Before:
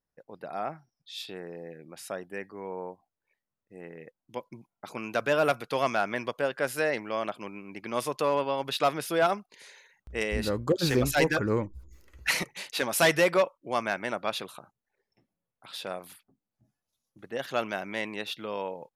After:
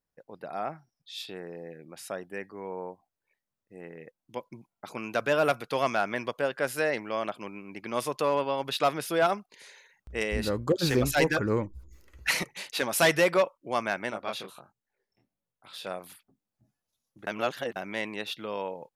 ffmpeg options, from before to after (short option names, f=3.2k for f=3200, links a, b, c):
-filter_complex "[0:a]asettb=1/sr,asplit=3[a][b][c];[a]atrim=end=14.104[d];[b]atrim=start=14.1:end=15.86,asetpts=PTS-STARTPTS,afade=t=in:d=0.004:c=qsin,afade=t=out:st=1.756:d=0.004:c=qsin,flanger=delay=18:depth=7.9:speed=1.4[e];[c]atrim=start=15.856[f];[d][e]acrossfade=d=0.004:c1=hsin:c2=qsin[g];[g][f]acrossfade=d=0.004:c1=qsin:c2=hsin,asplit=3[h][i][j];[h]atrim=end=17.272[k];[i]atrim=start=17.268:end=17.762,asetpts=PTS-STARTPTS,areverse[l];[j]atrim=start=17.758[m];[k][l]acrossfade=d=0.004:c1=hsin:c2=hsin[n];[n][m]acrossfade=d=0.004:c1=hsin:c2=hsin"